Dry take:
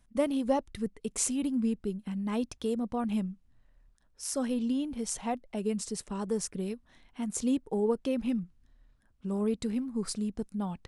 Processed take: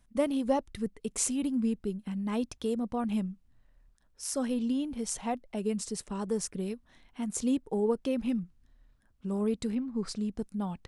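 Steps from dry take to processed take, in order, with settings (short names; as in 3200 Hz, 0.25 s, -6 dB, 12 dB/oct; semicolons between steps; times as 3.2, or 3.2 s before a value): 9.74–10.27 LPF 3400 Hz -> 8100 Hz 12 dB/oct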